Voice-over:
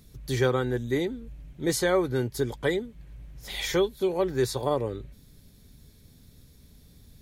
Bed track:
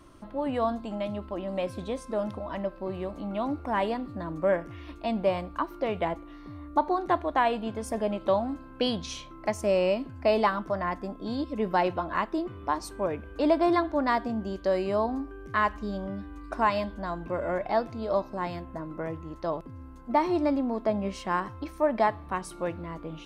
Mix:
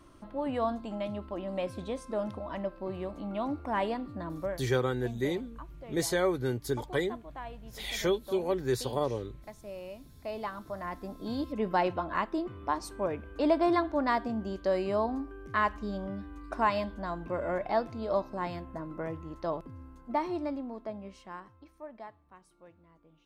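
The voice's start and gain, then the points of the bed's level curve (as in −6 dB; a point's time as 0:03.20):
4.30 s, −4.0 dB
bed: 0:04.37 −3 dB
0:04.62 −18.5 dB
0:09.96 −18.5 dB
0:11.31 −2.5 dB
0:19.72 −2.5 dB
0:22.31 −24 dB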